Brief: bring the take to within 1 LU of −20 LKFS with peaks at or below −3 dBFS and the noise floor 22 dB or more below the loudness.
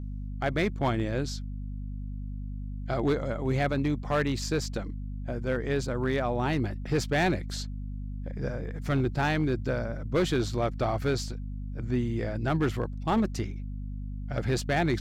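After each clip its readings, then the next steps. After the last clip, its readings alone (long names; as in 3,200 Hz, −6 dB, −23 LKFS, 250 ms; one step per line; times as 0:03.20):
share of clipped samples 1.3%; peaks flattened at −19.5 dBFS; mains hum 50 Hz; hum harmonics up to 250 Hz; level of the hum −33 dBFS; integrated loudness −30.0 LKFS; sample peak −19.5 dBFS; target loudness −20.0 LKFS
→ clipped peaks rebuilt −19.5 dBFS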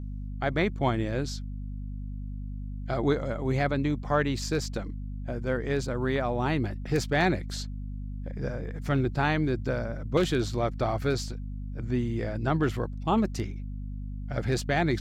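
share of clipped samples 0.0%; mains hum 50 Hz; hum harmonics up to 250 Hz; level of the hum −33 dBFS
→ mains-hum notches 50/100/150/200/250 Hz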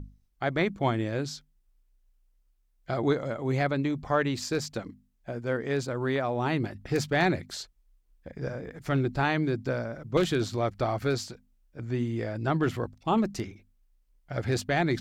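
mains hum none found; integrated loudness −29.5 LKFS; sample peak −11.5 dBFS; target loudness −20.0 LKFS
→ level +9.5 dB
brickwall limiter −3 dBFS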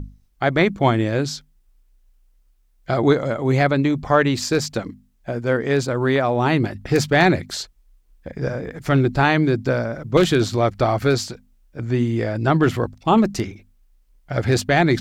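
integrated loudness −20.0 LKFS; sample peak −3.0 dBFS; background noise floor −59 dBFS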